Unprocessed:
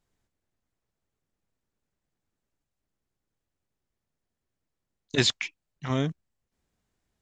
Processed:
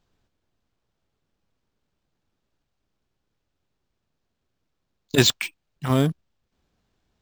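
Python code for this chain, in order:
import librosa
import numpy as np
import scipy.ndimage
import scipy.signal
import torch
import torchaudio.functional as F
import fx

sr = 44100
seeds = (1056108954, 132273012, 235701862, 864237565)

y = fx.peak_eq(x, sr, hz=2000.0, db=-7.0, octaves=0.3)
y = np.repeat(y[::4], 4)[:len(y)]
y = fx.high_shelf(y, sr, hz=7800.0, db=-7.0)
y = F.gain(torch.from_numpy(y), 7.0).numpy()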